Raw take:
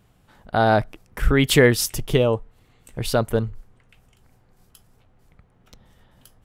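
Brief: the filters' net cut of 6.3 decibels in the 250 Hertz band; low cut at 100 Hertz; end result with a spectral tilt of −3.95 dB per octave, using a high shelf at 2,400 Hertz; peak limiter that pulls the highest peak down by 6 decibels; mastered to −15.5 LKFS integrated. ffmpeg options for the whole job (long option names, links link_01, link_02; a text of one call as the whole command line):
ffmpeg -i in.wav -af "highpass=100,equalizer=frequency=250:width_type=o:gain=-8,highshelf=frequency=2400:gain=3.5,volume=7.5dB,alimiter=limit=-2dB:level=0:latency=1" out.wav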